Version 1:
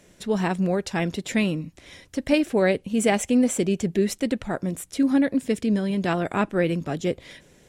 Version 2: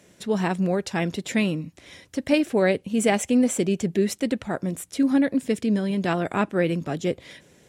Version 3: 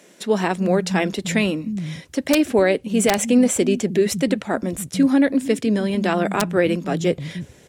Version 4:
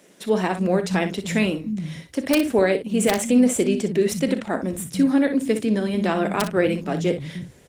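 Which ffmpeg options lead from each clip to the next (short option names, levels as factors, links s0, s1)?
-af "highpass=75"
-filter_complex "[0:a]acrossover=split=180[s0][s1];[s0]adelay=310[s2];[s2][s1]amix=inputs=2:normalize=0,aeval=exprs='(mod(2.66*val(0)+1,2)-1)/2.66':c=same,alimiter=level_in=3.98:limit=0.891:release=50:level=0:latency=1,volume=0.501"
-filter_complex "[0:a]asplit=2[s0][s1];[s1]aecho=0:1:37|60:0.188|0.299[s2];[s0][s2]amix=inputs=2:normalize=0,volume=0.794" -ar 48000 -c:a libopus -b:a 24k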